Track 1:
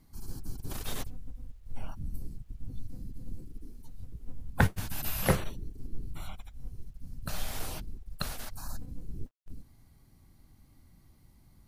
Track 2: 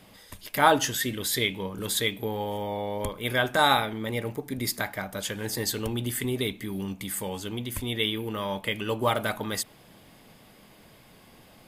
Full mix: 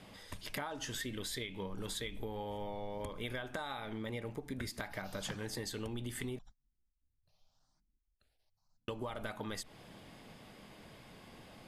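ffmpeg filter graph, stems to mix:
-filter_complex "[0:a]equalizer=f=5.2k:t=o:w=0.77:g=7.5,dynaudnorm=f=180:g=13:m=15.5dB,asplit=2[a][b];[b]afreqshift=0.85[c];[a][c]amix=inputs=2:normalize=1,volume=-18dB[d];[1:a]acompressor=threshold=-26dB:ratio=6,volume=-1dB,asplit=3[e][f][g];[e]atrim=end=6.39,asetpts=PTS-STARTPTS,afade=t=out:st=6.386:d=0.004:c=hsin[h];[f]atrim=start=6.39:end=8.88,asetpts=PTS-STARTPTS,volume=0[i];[g]atrim=start=8.88,asetpts=PTS-STARTPTS,afade=t=in:d=0.004:c=hsin[j];[h][i][j]concat=n=3:v=0:a=1,asplit=2[k][l];[l]apad=whole_len=514708[m];[d][m]sidechaingate=range=-33dB:threshold=-51dB:ratio=16:detection=peak[n];[n][k]amix=inputs=2:normalize=0,lowpass=11k,highshelf=f=7.7k:g=-6.5,acompressor=threshold=-38dB:ratio=6"

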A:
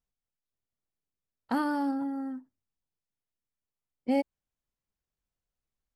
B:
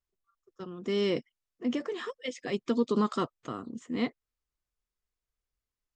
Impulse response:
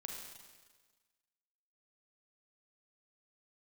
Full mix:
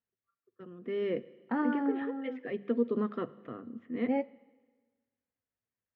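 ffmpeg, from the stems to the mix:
-filter_complex "[0:a]flanger=delay=8.5:depth=3:regen=58:speed=1.4:shape=triangular,volume=-1dB,asplit=2[a][b];[b]volume=-19.5dB[c];[1:a]equalizer=f=890:t=o:w=0.65:g=-8,bandreject=f=50:t=h:w=6,bandreject=f=100:t=h:w=6,bandreject=f=150:t=h:w=6,bandreject=f=200:t=h:w=6,adynamicequalizer=threshold=0.00708:dfrequency=560:dqfactor=1.1:tfrequency=560:tqfactor=1.1:attack=5:release=100:ratio=0.375:range=2.5:mode=boostabove:tftype=bell,volume=-9dB,asplit=2[d][e];[e]volume=-11dB[f];[2:a]atrim=start_sample=2205[g];[c][f]amix=inputs=2:normalize=0[h];[h][g]afir=irnorm=-1:irlink=0[i];[a][d][i]amix=inputs=3:normalize=0,highpass=100,equalizer=f=110:t=q:w=4:g=7,equalizer=f=240:t=q:w=4:g=5,equalizer=f=480:t=q:w=4:g=4,equalizer=f=1.8k:t=q:w=4:g=6,lowpass=f=2.6k:w=0.5412,lowpass=f=2.6k:w=1.3066"

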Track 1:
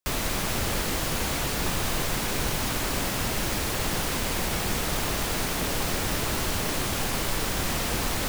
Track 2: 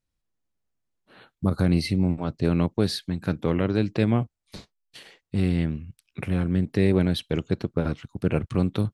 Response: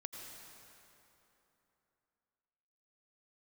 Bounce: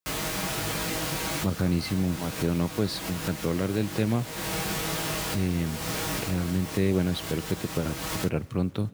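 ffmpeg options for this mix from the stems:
-filter_complex "[0:a]aecho=1:1:6.3:0.65,flanger=delay=18:depth=3.3:speed=1.2,volume=-0.5dB,asplit=2[a][b];[b]volume=-19dB[c];[1:a]acrusher=bits=8:mix=0:aa=0.000001,volume=-4.5dB,asplit=3[d][e][f];[e]volume=-16.5dB[g];[f]apad=whole_len=365575[h];[a][h]sidechaincompress=threshold=-35dB:ratio=8:attack=23:release=284[i];[2:a]atrim=start_sample=2205[j];[c][g]amix=inputs=2:normalize=0[k];[k][j]afir=irnorm=-1:irlink=0[l];[i][d][l]amix=inputs=3:normalize=0,highpass=61"

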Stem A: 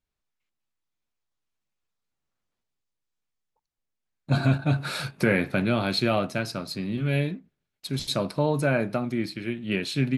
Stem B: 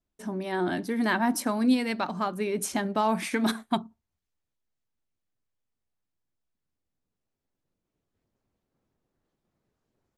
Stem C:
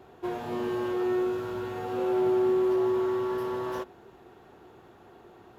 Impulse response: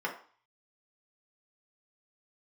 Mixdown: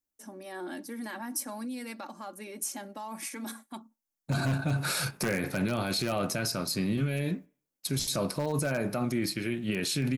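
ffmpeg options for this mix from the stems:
-filter_complex "[0:a]agate=range=-15dB:threshold=-42dB:ratio=16:detection=peak,aeval=exprs='0.211*(abs(mod(val(0)/0.211+3,4)-2)-1)':c=same,volume=1.5dB,asplit=2[a][b];[b]volume=-20dB[c];[1:a]highpass=f=230:w=0.5412,highpass=f=230:w=1.3066,aecho=1:1:3.6:0.6,alimiter=limit=-21dB:level=0:latency=1:release=17,volume=-10dB[d];[3:a]atrim=start_sample=2205[e];[c][e]afir=irnorm=-1:irlink=0[f];[a][d][f]amix=inputs=3:normalize=0,aexciter=amount=3.7:drive=3.6:freq=5.2k,alimiter=limit=-21dB:level=0:latency=1:release=25"

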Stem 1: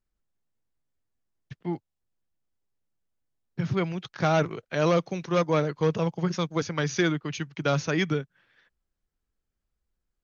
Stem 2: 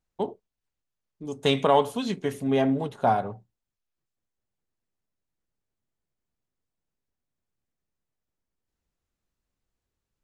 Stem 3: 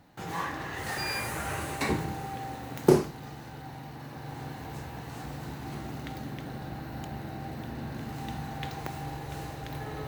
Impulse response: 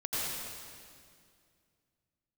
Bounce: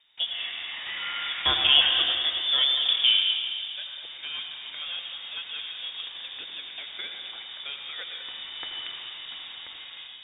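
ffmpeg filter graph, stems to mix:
-filter_complex "[0:a]volume=-15.5dB,asplit=3[a][b][c];[b]volume=-7.5dB[d];[1:a]volume=-3dB,asplit=2[e][f];[f]volume=-6.5dB[g];[2:a]dynaudnorm=f=160:g=7:m=4dB,volume=-9.5dB,asplit=2[h][i];[i]volume=-3.5dB[j];[c]apad=whole_len=444402[k];[h][k]sidechaincompress=threshold=-56dB:ratio=8:attack=16:release=100[l];[3:a]atrim=start_sample=2205[m];[d][g][j]amix=inputs=3:normalize=0[n];[n][m]afir=irnorm=-1:irlink=0[o];[a][e][l][o]amix=inputs=4:normalize=0,highshelf=f=2.5k:g=5,acrossover=split=240|3000[p][q][r];[p]acompressor=threshold=-52dB:ratio=2[s];[s][q][r]amix=inputs=3:normalize=0,lowpass=f=3.2k:t=q:w=0.5098,lowpass=f=3.2k:t=q:w=0.6013,lowpass=f=3.2k:t=q:w=0.9,lowpass=f=3.2k:t=q:w=2.563,afreqshift=-3800"

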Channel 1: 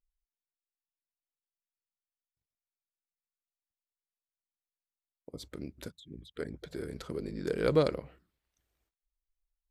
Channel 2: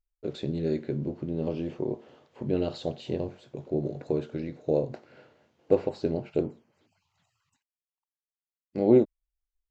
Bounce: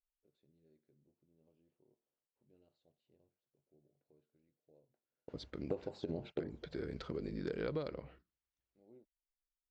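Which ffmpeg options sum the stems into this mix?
-filter_complex "[0:a]agate=range=-12dB:threshold=-59dB:ratio=16:detection=peak,lowpass=f=5k:w=0.5412,lowpass=f=5k:w=1.3066,volume=-2dB,asplit=2[a][b];[1:a]volume=-4dB[c];[b]apad=whole_len=427968[d];[c][d]sidechaingate=range=-39dB:threshold=-55dB:ratio=16:detection=peak[e];[a][e]amix=inputs=2:normalize=0,acompressor=threshold=-35dB:ratio=10"

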